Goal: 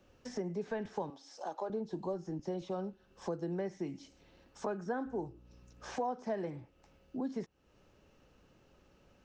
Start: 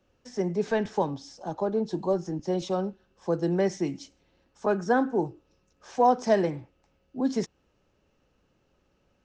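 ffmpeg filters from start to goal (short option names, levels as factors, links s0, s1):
-filter_complex "[0:a]acrossover=split=2800[s0][s1];[s1]acompressor=threshold=0.00224:ratio=4:attack=1:release=60[s2];[s0][s2]amix=inputs=2:normalize=0,asettb=1/sr,asplit=3[s3][s4][s5];[s3]atrim=end=1.104[s6];[s4]atrim=start=1.1:end=1.7,asetpts=PTS-STARTPTS,afade=t=in:d=0.004:c=qsin,afade=t=out:st=0.596:d=0.004:c=qsin,highpass=490[s7];[s5]atrim=start=1.696[s8];[s6][s7]acrossfade=d=0.004:c1=hsin:c2=qsin[s9];[s9][s8]acrossfade=d=0.004:c1=qsin:c2=hsin,acompressor=threshold=0.00631:ratio=3,asettb=1/sr,asplit=3[s10][s11][s12];[s10]atrim=end=5.064[s13];[s11]atrim=start=5.06:end=5.96,asetpts=PTS-STARTPTS,afade=t=in:d=0.004:c=qsin,afade=t=out:st=0.896:d=0.004:c=qsin,aeval=exprs='val(0)+0.000794*(sin(2*PI*60*n/s)+sin(2*PI*2*60*n/s)/2+sin(2*PI*3*60*n/s)/3+sin(2*PI*4*60*n/s)/4+sin(2*PI*5*60*n/s)/5)':c=same[s14];[s12]atrim=start=5.956[s15];[s13][s14]acrossfade=d=0.004:c1=hsin:c2=qsin[s16];[s16][s15]acrossfade=d=0.004:c1=qsin:c2=hsin,volume=1.58"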